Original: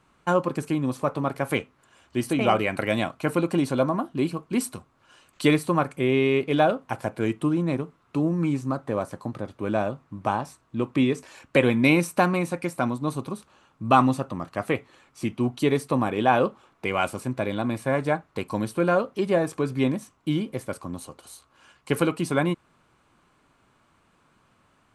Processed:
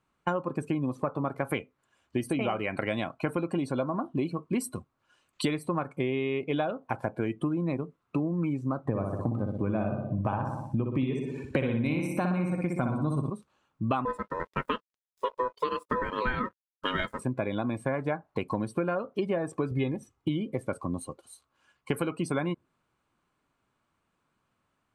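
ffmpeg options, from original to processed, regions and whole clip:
-filter_complex "[0:a]asettb=1/sr,asplit=3[s0][s1][s2];[s0]atrim=end=8.854[s3];[s1]atrim=start=8.85:end=13.3,asetpts=PTS-STARTPTS,afade=t=in:d=0.004:c=qsin,afade=t=out:st=4.446:d=0.004:c=qsin,equalizer=f=92:t=o:w=2.6:g=11,aecho=1:1:61|122|183|244|305|366|427:0.631|0.347|0.191|0.105|0.0577|0.0318|0.0175,atrim=end_sample=196245[s4];[s2]atrim=start=13.296[s5];[s3][s4]acrossfade=d=0.004:c1=hsin:c2=qsin[s6];[s6][s5]acrossfade=d=0.004:c1=qsin:c2=hsin,asettb=1/sr,asplit=3[s7][s8][s9];[s7]atrim=end=14.054[s10];[s8]atrim=start=14.05:end=17.19,asetpts=PTS-STARTPTS,afade=t=in:d=0.004:c=qsin,afade=t=out:st=3.136:d=0.004:c=qsin,aecho=1:1:3.7:0.71,atrim=end_sample=138474,aeval=exprs='val(0)*sin(2*PI*750*n/s)':c=same,aeval=exprs='sgn(val(0))*max(abs(val(0))-0.0075,0)':c=same[s11];[s9]atrim=start=17.186[s12];[s10][s11]acrossfade=d=0.004:c1=hsin:c2=qsin[s13];[s13][s12]acrossfade=d=0.004:c1=qsin:c2=hsin,asettb=1/sr,asplit=3[s14][s15][s16];[s14]atrim=end=19.714[s17];[s15]atrim=start=19.71:end=20.29,asetpts=PTS-STARTPTS,afade=t=in:d=0.004:c=qsin,afade=t=out:st=0.576:d=0.004:c=qsin,equalizer=f=73:t=o:w=2.5:g=7,aecho=1:1:2.4:0.46,atrim=end_sample=25578[s18];[s16]atrim=start=20.286[s19];[s17][s18]acrossfade=d=0.004:c1=hsin:c2=qsin[s20];[s20][s19]acrossfade=d=0.004:c1=qsin:c2=hsin,afftdn=nr=17:nf=-40,acompressor=threshold=0.0355:ratio=10,volume=1.5"

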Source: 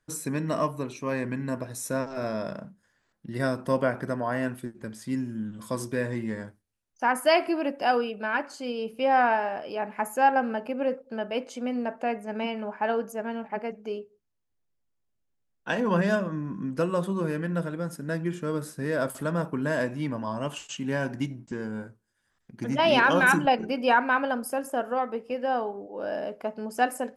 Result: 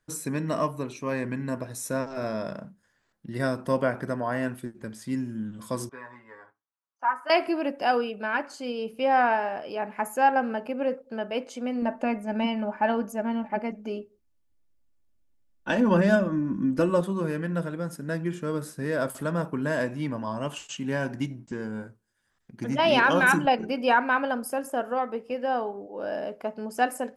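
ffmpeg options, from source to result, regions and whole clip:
-filter_complex "[0:a]asettb=1/sr,asplit=3[s0][s1][s2];[s0]atrim=end=5.894[s3];[s1]atrim=start=5.89:end=7.3,asetpts=PTS-STARTPTS,afade=t=in:d=0.004:c=qsin,afade=t=out:st=1.406:d=0.004:c=qsin,bandpass=f=1100:t=q:w=3.1,aecho=1:1:7.2:0.89,atrim=end_sample=62181[s4];[s2]atrim=start=7.296[s5];[s3][s4]acrossfade=d=0.004:c1=hsin:c2=qsin[s6];[s6][s5]acrossfade=d=0.004:c1=qsin:c2=hsin,asettb=1/sr,asplit=3[s7][s8][s9];[s7]atrim=end=11.824[s10];[s8]atrim=start=11.82:end=17.01,asetpts=PTS-STARTPTS,afade=t=in:d=0.004:c=qsin,afade=t=out:st=5.186:d=0.004:c=qsin,lowshelf=f=300:g=8,aecho=1:1:3.4:0.52,atrim=end_sample=228879[s11];[s9]atrim=start=17.006[s12];[s10][s11]acrossfade=d=0.004:c1=hsin:c2=qsin[s13];[s13][s12]acrossfade=d=0.004:c1=qsin:c2=hsin"

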